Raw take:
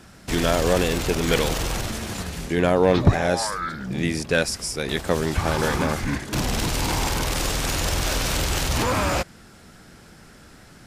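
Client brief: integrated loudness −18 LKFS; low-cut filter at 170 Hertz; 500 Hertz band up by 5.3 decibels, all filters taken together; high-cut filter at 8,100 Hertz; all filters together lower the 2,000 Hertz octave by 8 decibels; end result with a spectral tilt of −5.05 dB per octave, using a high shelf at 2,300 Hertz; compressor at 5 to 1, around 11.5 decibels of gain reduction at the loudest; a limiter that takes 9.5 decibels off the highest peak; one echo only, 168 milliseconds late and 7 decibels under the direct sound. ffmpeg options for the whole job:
ffmpeg -i in.wav -af "highpass=170,lowpass=8100,equalizer=frequency=500:width_type=o:gain=7,equalizer=frequency=2000:width_type=o:gain=-7.5,highshelf=frequency=2300:gain=-7.5,acompressor=threshold=-22dB:ratio=5,alimiter=limit=-19dB:level=0:latency=1,aecho=1:1:168:0.447,volume=11dB" out.wav

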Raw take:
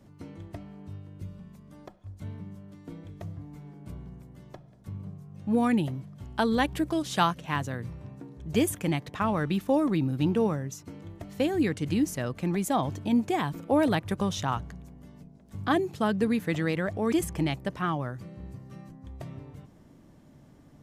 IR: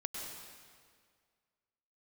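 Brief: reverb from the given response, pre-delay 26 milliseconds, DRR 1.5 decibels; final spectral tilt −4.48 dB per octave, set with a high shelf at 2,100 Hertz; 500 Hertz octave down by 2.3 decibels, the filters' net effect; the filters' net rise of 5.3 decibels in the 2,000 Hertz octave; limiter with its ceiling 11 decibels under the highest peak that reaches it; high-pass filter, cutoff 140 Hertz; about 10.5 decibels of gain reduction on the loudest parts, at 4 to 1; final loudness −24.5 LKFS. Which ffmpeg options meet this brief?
-filter_complex "[0:a]highpass=140,equalizer=frequency=500:width_type=o:gain=-3.5,equalizer=frequency=2000:width_type=o:gain=4,highshelf=frequency=2100:gain=5.5,acompressor=threshold=-30dB:ratio=4,alimiter=limit=-23.5dB:level=0:latency=1,asplit=2[link_01][link_02];[1:a]atrim=start_sample=2205,adelay=26[link_03];[link_02][link_03]afir=irnorm=-1:irlink=0,volume=-2dB[link_04];[link_01][link_04]amix=inputs=2:normalize=0,volume=10dB"

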